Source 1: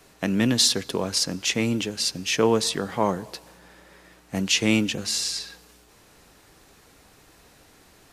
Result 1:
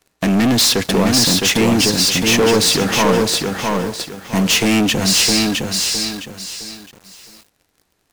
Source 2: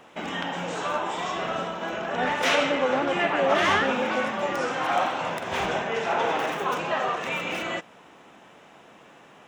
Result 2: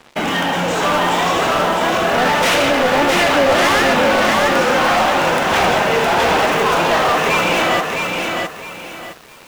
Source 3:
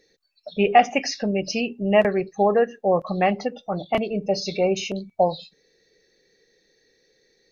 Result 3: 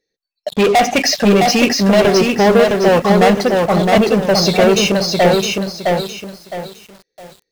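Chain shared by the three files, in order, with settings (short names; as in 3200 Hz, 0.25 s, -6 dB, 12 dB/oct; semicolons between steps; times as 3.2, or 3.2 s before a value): sample leveller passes 5; lo-fi delay 0.662 s, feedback 35%, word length 6-bit, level -3 dB; gain -3.5 dB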